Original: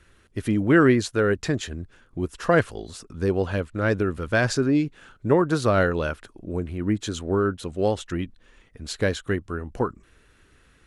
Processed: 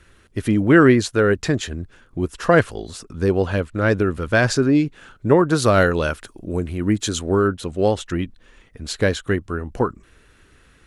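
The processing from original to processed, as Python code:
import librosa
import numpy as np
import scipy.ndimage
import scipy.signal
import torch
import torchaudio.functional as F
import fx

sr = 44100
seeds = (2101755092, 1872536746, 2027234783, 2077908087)

y = fx.high_shelf(x, sr, hz=4500.0, db=8.5, at=(5.58, 7.48))
y = F.gain(torch.from_numpy(y), 4.5).numpy()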